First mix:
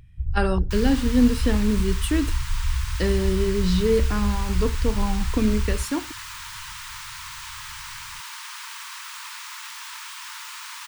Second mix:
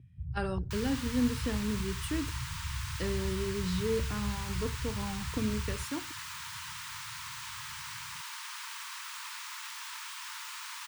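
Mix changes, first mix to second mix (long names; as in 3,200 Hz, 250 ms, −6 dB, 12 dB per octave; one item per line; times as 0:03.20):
speech −11.0 dB
first sound: add flat-topped band-pass 180 Hz, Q 0.85
second sound −5.0 dB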